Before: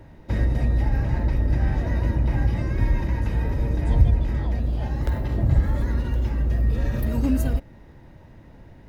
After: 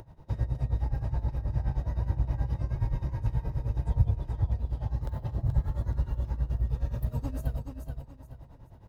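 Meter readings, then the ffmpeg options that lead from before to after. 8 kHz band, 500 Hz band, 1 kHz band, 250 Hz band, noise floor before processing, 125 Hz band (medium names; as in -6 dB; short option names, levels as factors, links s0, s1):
no reading, -11.0 dB, -8.5 dB, -13.0 dB, -47 dBFS, -6.5 dB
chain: -af "equalizer=f=125:t=o:w=1:g=8,equalizer=f=250:t=o:w=1:g=-8,equalizer=f=1000:t=o:w=1:g=5,equalizer=f=2000:t=o:w=1:g=-9,acompressor=mode=upward:threshold=0.0224:ratio=2.5,tremolo=f=9.5:d=0.83,aecho=1:1:428|856|1284|1712:0.501|0.155|0.0482|0.0149,volume=0.398"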